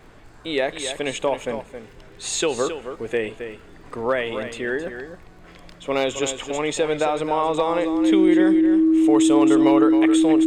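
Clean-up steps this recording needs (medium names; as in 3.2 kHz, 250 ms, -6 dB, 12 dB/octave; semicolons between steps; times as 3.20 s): de-click; band-stop 320 Hz, Q 30; expander -37 dBFS, range -21 dB; inverse comb 268 ms -9.5 dB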